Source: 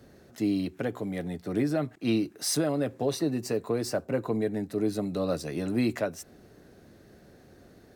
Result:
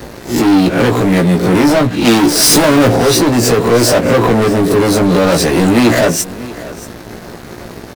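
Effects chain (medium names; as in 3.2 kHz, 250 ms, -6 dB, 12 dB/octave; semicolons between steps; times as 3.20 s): reverse spectral sustain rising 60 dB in 0.35 s; waveshaping leveller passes 5; on a send: delay 634 ms -18 dB; 2.05–2.96 s: on the sum: power-law waveshaper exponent 0.5; doubling 17 ms -5 dB; trim +7 dB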